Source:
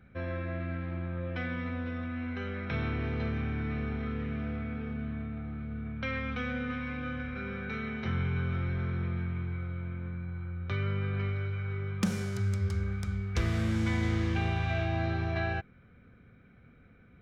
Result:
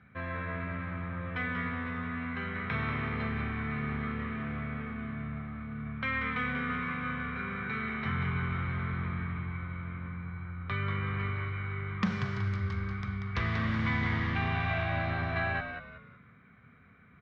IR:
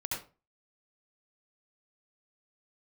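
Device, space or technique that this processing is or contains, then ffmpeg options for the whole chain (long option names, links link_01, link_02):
frequency-shifting delay pedal into a guitar cabinet: -filter_complex "[0:a]asplit=5[link_01][link_02][link_03][link_04][link_05];[link_02]adelay=187,afreqshift=-75,volume=-6.5dB[link_06];[link_03]adelay=374,afreqshift=-150,volume=-15.9dB[link_07];[link_04]adelay=561,afreqshift=-225,volume=-25.2dB[link_08];[link_05]adelay=748,afreqshift=-300,volume=-34.6dB[link_09];[link_01][link_06][link_07][link_08][link_09]amix=inputs=5:normalize=0,highpass=91,equalizer=frequency=330:width_type=q:width=4:gain=-9,equalizer=frequency=530:width_type=q:width=4:gain=-6,equalizer=frequency=1100:width_type=q:width=4:gain=9,equalizer=frequency=1900:width_type=q:width=4:gain=7,lowpass=frequency=4300:width=0.5412,lowpass=frequency=4300:width=1.3066"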